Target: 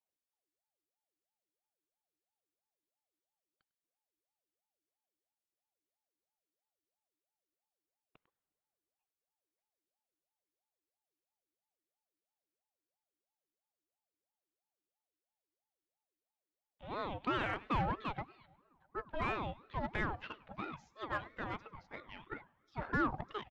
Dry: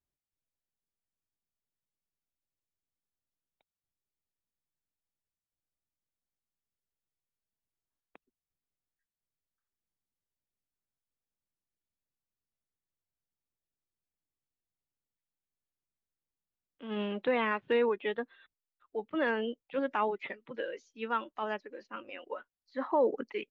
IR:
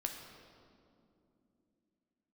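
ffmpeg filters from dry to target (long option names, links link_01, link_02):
-filter_complex "[0:a]aecho=1:1:100:0.1,aeval=exprs='0.133*(cos(1*acos(clip(val(0)/0.133,-1,1)))-cos(1*PI/2))+0.00668*(cos(8*acos(clip(val(0)/0.133,-1,1)))-cos(8*PI/2))':channel_layout=same,asplit=2[link_01][link_02];[1:a]atrim=start_sample=2205,lowshelf=frequency=360:gain=-10[link_03];[link_02][link_03]afir=irnorm=-1:irlink=0,volume=-17.5dB[link_04];[link_01][link_04]amix=inputs=2:normalize=0,acrossover=split=3500[link_05][link_06];[link_06]acompressor=threshold=-55dB:ratio=4:attack=1:release=60[link_07];[link_05][link_07]amix=inputs=2:normalize=0,aeval=exprs='val(0)*sin(2*PI*590*n/s+590*0.5/3*sin(2*PI*3*n/s))':channel_layout=same,volume=-4dB"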